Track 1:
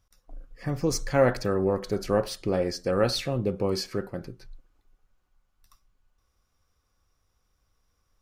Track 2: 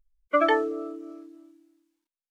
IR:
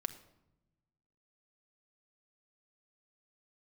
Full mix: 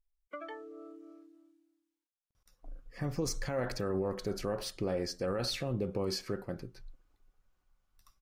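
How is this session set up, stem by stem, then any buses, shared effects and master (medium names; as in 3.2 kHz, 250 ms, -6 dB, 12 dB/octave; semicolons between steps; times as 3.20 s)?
-4.0 dB, 2.35 s, no send, none
-11.5 dB, 0.00 s, no send, compression 3:1, threshold -33 dBFS, peak gain reduction 12 dB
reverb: none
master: peak limiter -24.5 dBFS, peak gain reduction 11.5 dB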